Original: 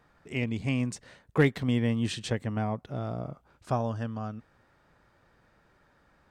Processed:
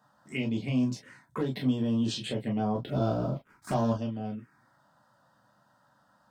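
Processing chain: HPF 130 Hz 24 dB/oct; limiter -22 dBFS, peak gain reduction 11.5 dB; 2.75–3.93 sample leveller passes 2; envelope phaser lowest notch 380 Hz, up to 2100 Hz, full sweep at -28 dBFS; reverb, pre-delay 3 ms, DRR -0.5 dB

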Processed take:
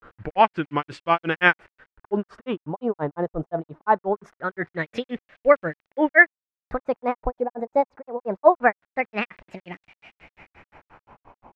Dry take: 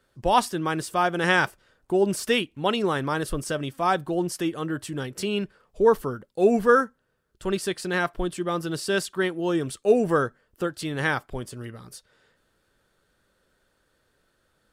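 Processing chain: speed glide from 87% -> 168%; in parallel at -2 dB: upward compressor, threshold -25 dBFS; on the sum: grains 0.134 s, grains 5.7/s, spray 28 ms, pitch spread up and down by 0 st; bit-crush 9-bit; LFO low-pass sine 0.23 Hz 840–2500 Hz; gain -1.5 dB

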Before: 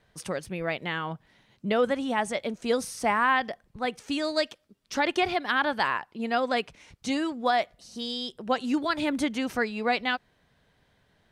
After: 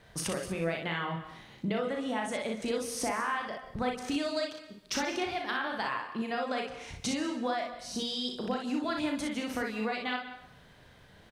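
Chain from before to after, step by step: compressor 8:1, threshold -39 dBFS, peak gain reduction 19.5 dB; early reflections 36 ms -5.5 dB, 60 ms -4.5 dB; plate-style reverb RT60 0.79 s, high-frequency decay 0.85×, pre-delay 0.115 s, DRR 11.5 dB; gain +7 dB

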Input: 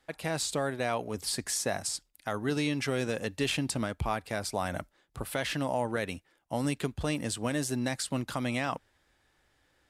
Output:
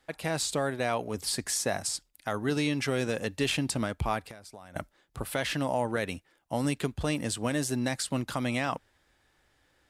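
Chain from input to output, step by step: 4.22–4.76 compressor 16:1, threshold -45 dBFS, peak gain reduction 19.5 dB; gain +1.5 dB

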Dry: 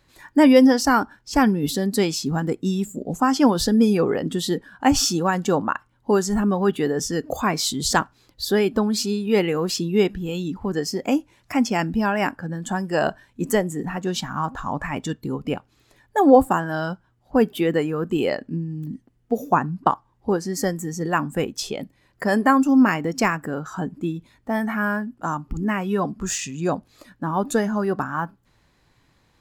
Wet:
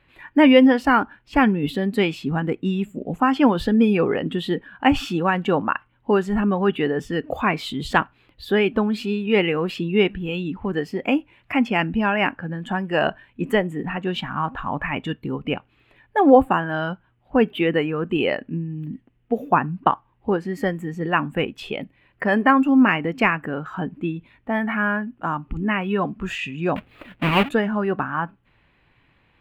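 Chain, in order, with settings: 26.76–27.49 half-waves squared off; resonant high shelf 4000 Hz -14 dB, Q 3

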